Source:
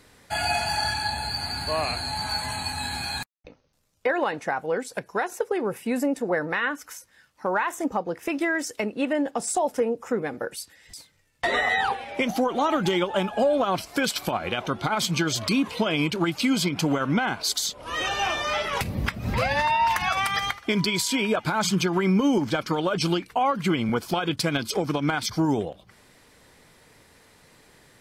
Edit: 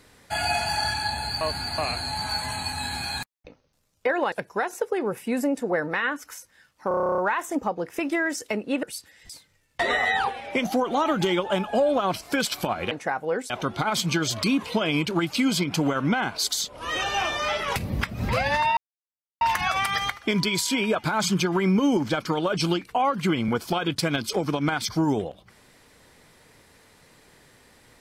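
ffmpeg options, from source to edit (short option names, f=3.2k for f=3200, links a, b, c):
-filter_complex "[0:a]asplit=18[a][b][c][d][e][f][g][h][i][j][k][l][m][n][o][p][q][r];[a]atrim=end=1.412[s];[b]atrim=start=1.408:end=1.782,asetpts=PTS-STARTPTS,areverse[t];[c]atrim=start=1.778:end=4.322[u];[d]atrim=start=4.908:end=7.502[v];[e]atrim=start=7.468:end=7.502[w];[f]atrim=start=7.468:end=7.502[x];[g]atrim=start=7.468:end=7.502[y];[h]atrim=start=7.468:end=7.502[z];[i]atrim=start=7.468:end=7.502[aa];[j]atrim=start=7.468:end=7.502[ab];[k]atrim=start=7.468:end=7.502[ac];[l]atrim=start=7.468:end=7.502[ad];[m]atrim=start=7.468:end=7.502[ae];[n]atrim=start=7.468:end=9.122[af];[o]atrim=start=10.468:end=14.552[ag];[p]atrim=start=4.318:end=4.912[ah];[q]atrim=start=14.548:end=19.82,asetpts=PTS-STARTPTS,afade=t=out:st=5.268:d=0.004:c=hsin,apad=pad_dur=0.64[ai];[r]atrim=start=19.82,asetpts=PTS-STARTPTS,afade=t=in:d=0.004:c=hsin[aj];[s][t]acrossfade=d=0.004:c1=hsin:c2=hsin[ak];[ak][u]acrossfade=d=0.004:c1=hsin:c2=hsin[al];[al][v]acrossfade=d=0.004:c1=hsin:c2=hsin[am];[am][w]acrossfade=d=0.004:c1=hsin:c2=hsin[an];[an][x]acrossfade=d=0.004:c1=hsin:c2=hsin[ao];[ao][y]acrossfade=d=0.004:c1=hsin:c2=hsin[ap];[ap][z]acrossfade=d=0.004:c1=hsin:c2=hsin[aq];[aq][aa]acrossfade=d=0.004:c1=hsin:c2=hsin[ar];[ar][ab]acrossfade=d=0.004:c1=hsin:c2=hsin[as];[as][ac]acrossfade=d=0.004:c1=hsin:c2=hsin[at];[at][ad]acrossfade=d=0.004:c1=hsin:c2=hsin[au];[au][ae]acrossfade=d=0.004:c1=hsin:c2=hsin[av];[av][af]acrossfade=d=0.004:c1=hsin:c2=hsin[aw];[aw][ag]acrossfade=d=0.004:c1=hsin:c2=hsin[ax];[ax][ah]acrossfade=d=0.004:c1=hsin:c2=hsin[ay];[ai][aj]concat=n=2:v=0:a=1[az];[ay][az]acrossfade=d=0.004:c1=hsin:c2=hsin"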